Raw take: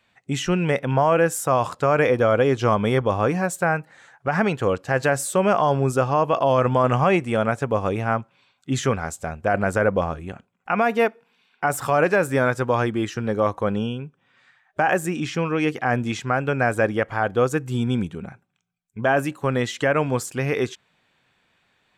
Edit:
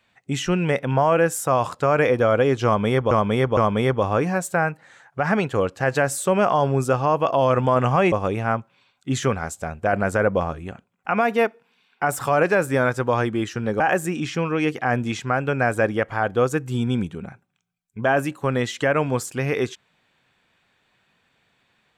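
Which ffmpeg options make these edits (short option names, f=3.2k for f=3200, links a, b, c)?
-filter_complex "[0:a]asplit=5[a][b][c][d][e];[a]atrim=end=3.112[f];[b]atrim=start=2.648:end=3.112[g];[c]atrim=start=2.648:end=7.202[h];[d]atrim=start=7.728:end=13.412[i];[e]atrim=start=14.798[j];[f][g]acrossfade=d=0.004:c1=hsin:c2=hsin[k];[k][h]acrossfade=d=0.004:c1=hsin:c2=hsin[l];[l][i]acrossfade=d=0.004:c1=hsin:c2=hsin[m];[m][j]acrossfade=d=0.004:c1=hsin:c2=hsin"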